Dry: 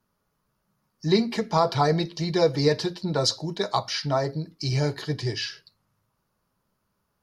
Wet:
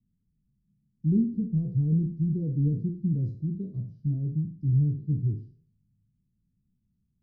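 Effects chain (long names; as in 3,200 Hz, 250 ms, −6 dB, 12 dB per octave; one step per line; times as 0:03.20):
peak hold with a decay on every bin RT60 0.45 s
inverse Chebyshev low-pass filter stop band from 770 Hz, stop band 60 dB
level +3 dB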